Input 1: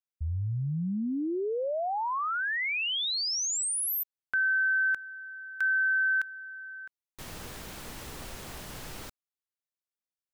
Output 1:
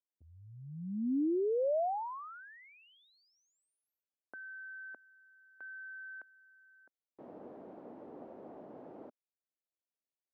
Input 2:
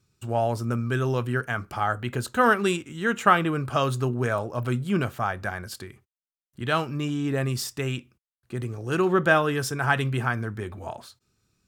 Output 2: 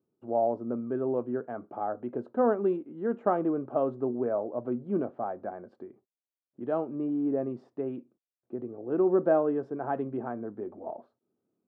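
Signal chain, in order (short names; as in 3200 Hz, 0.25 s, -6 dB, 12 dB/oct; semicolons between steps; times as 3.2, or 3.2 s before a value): Chebyshev band-pass 260–680 Hz, order 2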